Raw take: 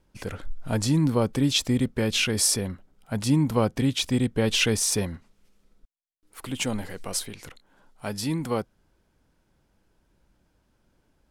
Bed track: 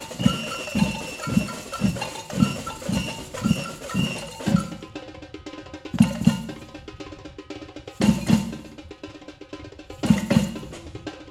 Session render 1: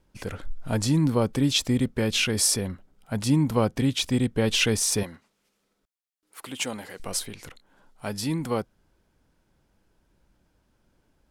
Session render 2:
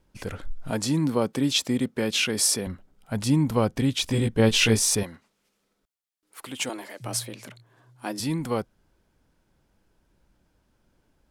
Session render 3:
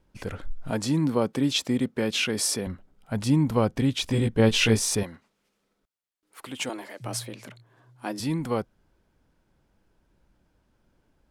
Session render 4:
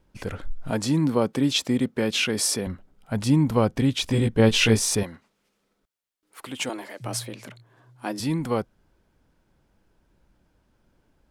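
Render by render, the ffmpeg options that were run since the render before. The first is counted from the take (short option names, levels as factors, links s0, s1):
-filter_complex "[0:a]asettb=1/sr,asplit=3[s0][s1][s2];[s0]atrim=end=5.034[s3];[s1]atrim=start=5.03:end=7,asetpts=PTS-STARTPTS,afade=t=in:d=0.004:c=qsin,afade=t=out:st=1.966:d=0.004:c=qsin,highpass=f=430:p=1[s4];[s2]atrim=start=6.996[s5];[s3][s4]acrossfade=d=0.004:c1=hsin:c2=qsin[s6];[s6][s5]acrossfade=d=0.004:c1=qsin:c2=hsin"
-filter_complex "[0:a]asettb=1/sr,asplit=3[s0][s1][s2];[s0]atrim=end=0.704[s3];[s1]atrim=start=0.7:end=2.67,asetpts=PTS-STARTPTS,afade=t=in:d=0.004:c=qsin,afade=t=out:st=1.966:d=0.004:c=qsin,highpass=170[s4];[s2]atrim=start=2.666[s5];[s3][s4]acrossfade=d=0.004:c1=hsin:c2=qsin[s6];[s6][s5]acrossfade=d=0.004:c1=qsin:c2=hsin,asettb=1/sr,asplit=3[s7][s8][s9];[s7]atrim=end=4.074[s10];[s8]atrim=start=4.07:end=4.95,asetpts=PTS-STARTPTS,afade=t=in:d=0.004:c=qsin,afade=t=out:st=0.876:d=0.004:c=qsin,asplit=2[s11][s12];[s12]adelay=18,volume=0.794[s13];[s11][s13]amix=inputs=2:normalize=0,atrim=end_sample=38808[s14];[s9]atrim=start=4.946[s15];[s10][s14]acrossfade=d=0.004:c1=hsin:c2=qsin[s16];[s16][s15]acrossfade=d=0.004:c1=qsin:c2=hsin,asettb=1/sr,asplit=3[s17][s18][s19];[s17]atrim=end=6.694[s20];[s18]atrim=start=6.69:end=8.2,asetpts=PTS-STARTPTS,afade=t=in:d=0.004:c=qsin,afade=t=out:st=1.506:d=0.004:c=qsin,afreqshift=110[s21];[s19]atrim=start=8.196[s22];[s20][s21]acrossfade=d=0.004:c1=hsin:c2=qsin[s23];[s23][s22]acrossfade=d=0.004:c1=qsin:c2=hsin"
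-af "highshelf=f=4300:g=-5.5"
-af "volume=1.26"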